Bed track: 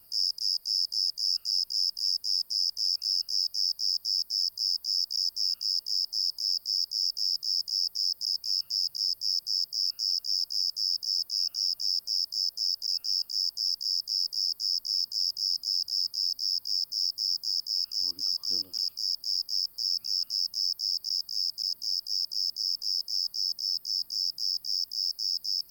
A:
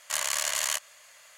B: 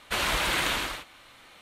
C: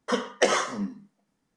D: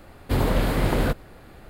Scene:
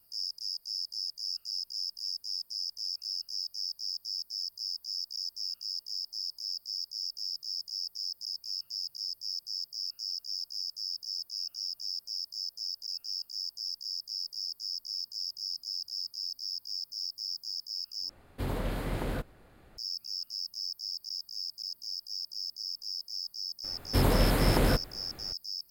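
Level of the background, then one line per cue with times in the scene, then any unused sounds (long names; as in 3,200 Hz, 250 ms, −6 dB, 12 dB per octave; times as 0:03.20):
bed track −8 dB
0:18.09: overwrite with D −11.5 dB
0:23.64: mix in D −3 dB + parametric band 13,000 Hz +5.5 dB 1.6 octaves
not used: A, B, C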